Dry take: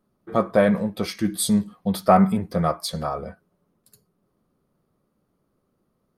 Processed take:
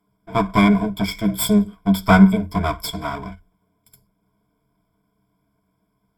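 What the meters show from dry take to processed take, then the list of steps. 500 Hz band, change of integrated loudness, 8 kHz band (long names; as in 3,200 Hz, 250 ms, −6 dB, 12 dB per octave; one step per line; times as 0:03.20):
−2.5 dB, +4.0 dB, −0.5 dB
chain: lower of the sound and its delayed copy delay 0.92 ms
EQ curve with evenly spaced ripples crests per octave 1.7, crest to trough 18 dB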